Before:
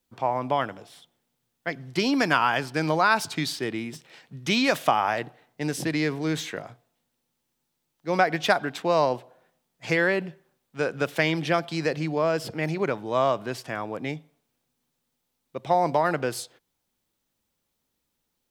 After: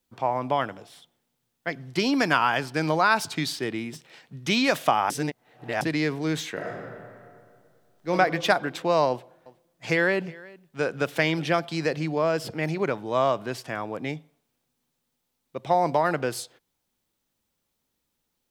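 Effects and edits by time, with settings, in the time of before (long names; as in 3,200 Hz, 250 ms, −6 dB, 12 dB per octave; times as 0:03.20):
0:05.10–0:05.81: reverse
0:06.53–0:08.10: thrown reverb, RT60 2.2 s, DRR −2.5 dB
0:09.09–0:11.56: single-tap delay 367 ms −22 dB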